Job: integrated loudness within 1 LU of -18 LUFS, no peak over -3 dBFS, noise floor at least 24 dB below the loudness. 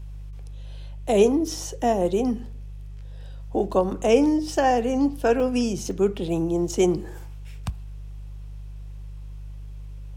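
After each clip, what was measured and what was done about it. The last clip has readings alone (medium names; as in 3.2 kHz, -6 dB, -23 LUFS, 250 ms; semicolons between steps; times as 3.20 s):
dropouts 4; longest dropout 1.5 ms; hum 50 Hz; highest harmonic 150 Hz; hum level -34 dBFS; loudness -23.0 LUFS; peak level -6.0 dBFS; loudness target -18.0 LUFS
-> interpolate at 1.57/5.40/5.91/6.76 s, 1.5 ms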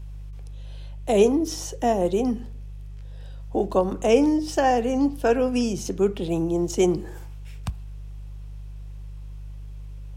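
dropouts 0; hum 50 Hz; highest harmonic 150 Hz; hum level -34 dBFS
-> de-hum 50 Hz, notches 3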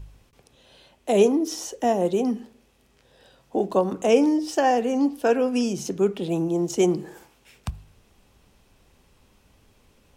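hum not found; loudness -23.0 LUFS; peak level -6.5 dBFS; loudness target -18.0 LUFS
-> trim +5 dB; peak limiter -3 dBFS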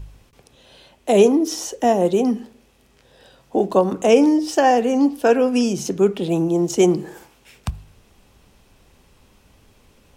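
loudness -18.0 LUFS; peak level -3.0 dBFS; noise floor -56 dBFS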